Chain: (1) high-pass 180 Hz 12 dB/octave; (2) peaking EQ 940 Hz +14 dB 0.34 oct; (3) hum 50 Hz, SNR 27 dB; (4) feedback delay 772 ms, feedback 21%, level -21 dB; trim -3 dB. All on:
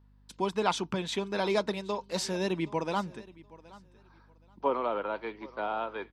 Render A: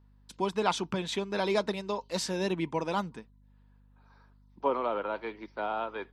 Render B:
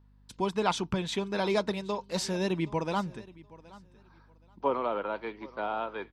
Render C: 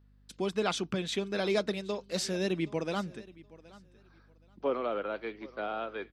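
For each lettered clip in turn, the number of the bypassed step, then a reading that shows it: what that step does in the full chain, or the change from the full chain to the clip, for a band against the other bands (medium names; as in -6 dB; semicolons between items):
4, momentary loudness spread change -2 LU; 1, 125 Hz band +3.0 dB; 2, 1 kHz band -6.0 dB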